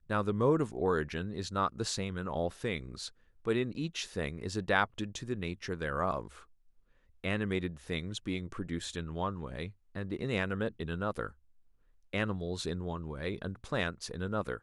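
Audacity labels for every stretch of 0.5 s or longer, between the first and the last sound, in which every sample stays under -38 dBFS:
6.270000	7.240000	silence
11.290000	12.130000	silence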